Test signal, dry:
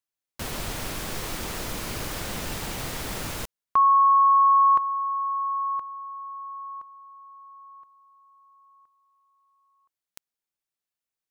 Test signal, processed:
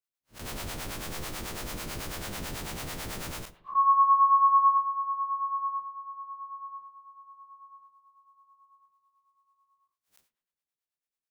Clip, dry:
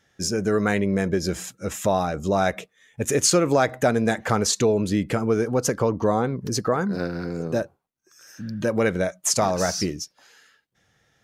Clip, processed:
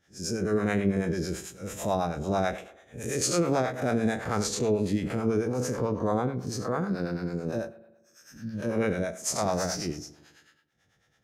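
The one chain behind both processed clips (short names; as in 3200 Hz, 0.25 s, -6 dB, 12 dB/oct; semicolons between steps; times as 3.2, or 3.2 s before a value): time blur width 0.114 s; spring tank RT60 1.1 s, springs 40 ms, chirp 45 ms, DRR 15 dB; harmonic tremolo 9.1 Hz, depth 70%, crossover 530 Hz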